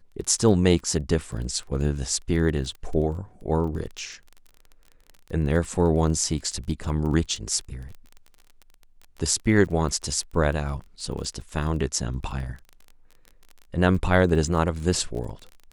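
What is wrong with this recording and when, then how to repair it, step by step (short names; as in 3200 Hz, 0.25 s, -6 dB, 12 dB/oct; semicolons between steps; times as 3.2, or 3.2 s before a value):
crackle 24/s -33 dBFS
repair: de-click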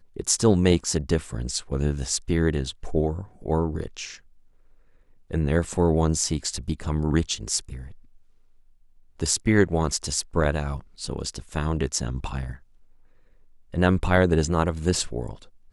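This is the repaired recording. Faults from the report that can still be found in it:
none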